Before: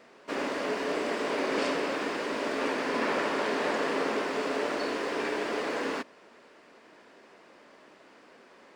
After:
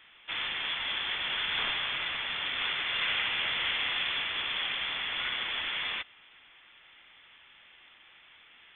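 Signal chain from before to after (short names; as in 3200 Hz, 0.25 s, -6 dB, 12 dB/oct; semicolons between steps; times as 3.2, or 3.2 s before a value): bell 2000 Hz +8.5 dB 2.7 oct; inverted band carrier 3800 Hz; gain -6.5 dB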